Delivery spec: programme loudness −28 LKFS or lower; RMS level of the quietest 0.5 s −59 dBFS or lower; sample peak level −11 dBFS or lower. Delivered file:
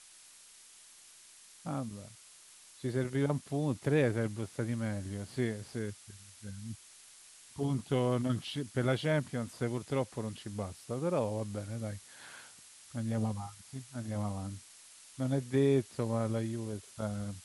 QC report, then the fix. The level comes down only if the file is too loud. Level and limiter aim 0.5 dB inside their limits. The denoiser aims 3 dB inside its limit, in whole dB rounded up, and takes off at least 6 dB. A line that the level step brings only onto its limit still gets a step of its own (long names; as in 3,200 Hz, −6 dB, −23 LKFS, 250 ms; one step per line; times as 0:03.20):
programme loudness −35.0 LKFS: in spec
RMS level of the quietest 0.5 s −57 dBFS: out of spec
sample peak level −17.0 dBFS: in spec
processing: broadband denoise 6 dB, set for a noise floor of −57 dBFS